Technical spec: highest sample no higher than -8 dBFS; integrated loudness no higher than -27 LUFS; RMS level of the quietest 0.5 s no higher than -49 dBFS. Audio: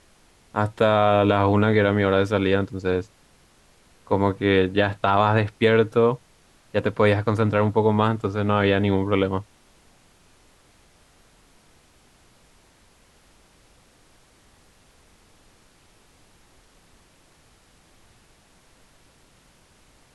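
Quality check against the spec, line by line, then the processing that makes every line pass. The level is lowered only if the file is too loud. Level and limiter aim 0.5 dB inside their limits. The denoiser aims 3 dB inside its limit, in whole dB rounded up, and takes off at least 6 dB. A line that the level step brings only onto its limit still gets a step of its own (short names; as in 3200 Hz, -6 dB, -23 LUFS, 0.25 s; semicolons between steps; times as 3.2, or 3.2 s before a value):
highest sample -5.5 dBFS: fail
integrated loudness -21.0 LUFS: fail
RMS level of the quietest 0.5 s -57 dBFS: OK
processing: gain -6.5 dB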